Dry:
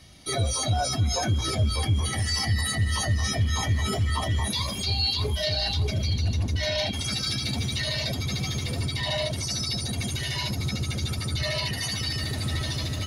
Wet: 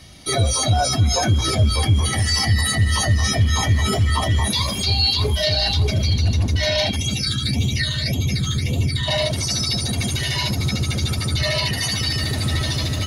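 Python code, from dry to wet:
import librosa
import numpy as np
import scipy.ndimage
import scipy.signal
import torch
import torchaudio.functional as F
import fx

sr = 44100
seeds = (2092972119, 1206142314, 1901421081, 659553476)

y = fx.phaser_stages(x, sr, stages=8, low_hz=680.0, high_hz=1600.0, hz=1.8, feedback_pct=40, at=(6.96, 9.08))
y = F.gain(torch.from_numpy(y), 7.0).numpy()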